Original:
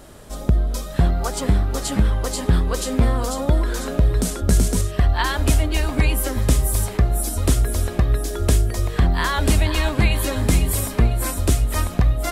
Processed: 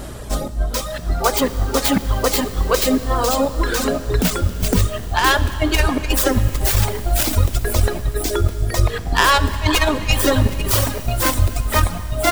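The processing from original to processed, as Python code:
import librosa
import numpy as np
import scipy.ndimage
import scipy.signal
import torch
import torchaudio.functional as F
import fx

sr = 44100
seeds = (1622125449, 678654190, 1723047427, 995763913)

y = fx.tracing_dist(x, sr, depth_ms=0.23)
y = fx.dereverb_blind(y, sr, rt60_s=1.4)
y = fx.over_compress(y, sr, threshold_db=-23.0, ratio=-0.5)
y = fx.add_hum(y, sr, base_hz=60, snr_db=19)
y = fx.rev_schroeder(y, sr, rt60_s=3.7, comb_ms=26, drr_db=12.0)
y = y * 10.0 ** (6.5 / 20.0)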